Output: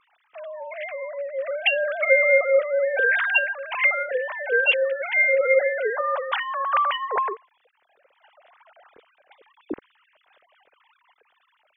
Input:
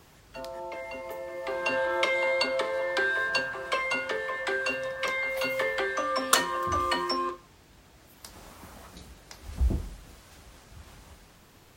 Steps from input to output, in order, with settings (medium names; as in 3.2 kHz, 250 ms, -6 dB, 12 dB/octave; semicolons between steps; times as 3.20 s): formants replaced by sine waves; resonant low shelf 560 Hz +6.5 dB, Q 1.5; trim +5.5 dB